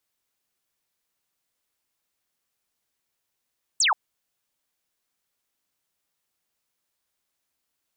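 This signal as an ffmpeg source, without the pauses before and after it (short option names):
-f lavfi -i "aevalsrc='0.133*clip(t/0.002,0,1)*clip((0.13-t)/0.002,0,1)*sin(2*PI*8600*0.13/log(760/8600)*(exp(log(760/8600)*t/0.13)-1))':d=0.13:s=44100"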